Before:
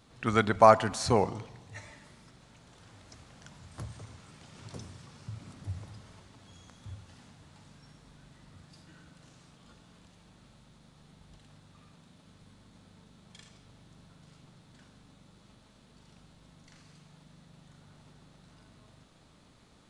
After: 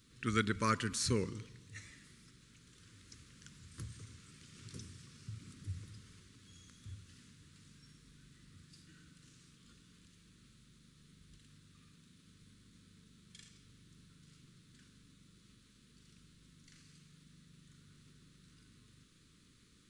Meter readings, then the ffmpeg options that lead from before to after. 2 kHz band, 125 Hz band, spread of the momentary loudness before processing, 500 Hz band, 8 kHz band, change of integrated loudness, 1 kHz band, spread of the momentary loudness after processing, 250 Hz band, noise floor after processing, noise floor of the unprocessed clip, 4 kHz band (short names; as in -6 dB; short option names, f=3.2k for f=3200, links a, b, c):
-5.5 dB, -5.0 dB, 26 LU, -15.5 dB, -0.5 dB, -12.5 dB, -15.0 dB, 25 LU, -5.5 dB, -65 dBFS, -60 dBFS, -2.5 dB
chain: -af "asuperstop=centerf=740:order=4:qfactor=0.78,highshelf=f=5.8k:g=7.5,volume=-5dB"